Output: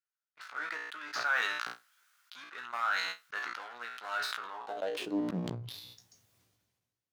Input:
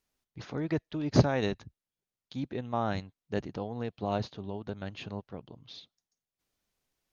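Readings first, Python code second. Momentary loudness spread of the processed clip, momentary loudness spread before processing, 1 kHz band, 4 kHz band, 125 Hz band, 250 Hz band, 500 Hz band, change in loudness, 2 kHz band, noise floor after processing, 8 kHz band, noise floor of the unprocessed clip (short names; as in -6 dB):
16 LU, 20 LU, +1.0 dB, +4.0 dB, -13.5 dB, -7.0 dB, -8.5 dB, -2.0 dB, +10.5 dB, under -85 dBFS, n/a, under -85 dBFS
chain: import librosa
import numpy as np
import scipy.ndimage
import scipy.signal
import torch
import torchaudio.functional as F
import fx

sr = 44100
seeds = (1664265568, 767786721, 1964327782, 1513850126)

y = fx.leveller(x, sr, passes=3)
y = fx.comb_fb(y, sr, f0_hz=60.0, decay_s=0.2, harmonics='all', damping=0.0, mix_pct=90)
y = fx.filter_sweep_highpass(y, sr, from_hz=1400.0, to_hz=99.0, start_s=4.43, end_s=5.66, q=5.4)
y = fx.sustainer(y, sr, db_per_s=37.0)
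y = y * 10.0 ** (-7.5 / 20.0)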